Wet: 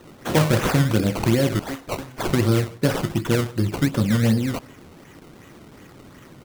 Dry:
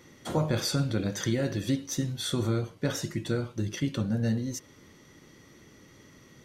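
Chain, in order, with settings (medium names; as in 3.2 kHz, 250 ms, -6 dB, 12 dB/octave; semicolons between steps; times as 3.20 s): 1.59–2.33 s: high-pass 1.4 kHz 6 dB/octave; decimation with a swept rate 18×, swing 100% 2.7 Hz; echo from a far wall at 26 m, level -25 dB; trim +9 dB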